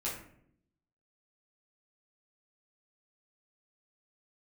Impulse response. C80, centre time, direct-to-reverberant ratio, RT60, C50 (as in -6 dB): 8.5 dB, 38 ms, -8.5 dB, 0.65 s, 5.0 dB